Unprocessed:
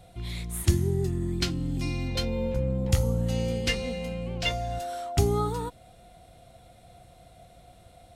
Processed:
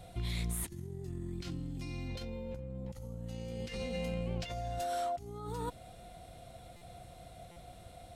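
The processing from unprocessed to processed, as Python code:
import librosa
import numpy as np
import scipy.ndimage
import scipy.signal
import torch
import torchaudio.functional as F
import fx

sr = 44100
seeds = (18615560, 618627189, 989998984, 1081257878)

y = fx.over_compress(x, sr, threshold_db=-35.0, ratio=-1.0)
y = fx.buffer_glitch(y, sr, at_s=(6.76, 7.51), block=256, repeats=8)
y = F.gain(torch.from_numpy(y), -5.0).numpy()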